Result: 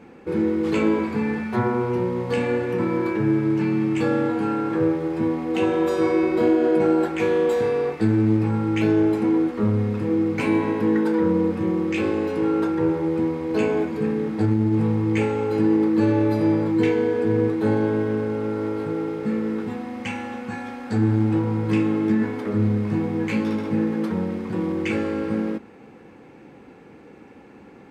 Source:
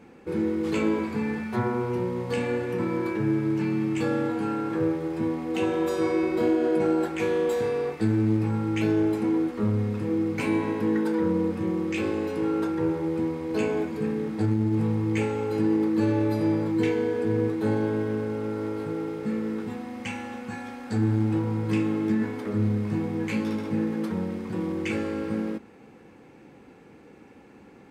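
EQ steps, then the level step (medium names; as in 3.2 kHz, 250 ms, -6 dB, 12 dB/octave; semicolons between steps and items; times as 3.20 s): bass shelf 150 Hz -2.5 dB; treble shelf 5 kHz -7.5 dB; +5.0 dB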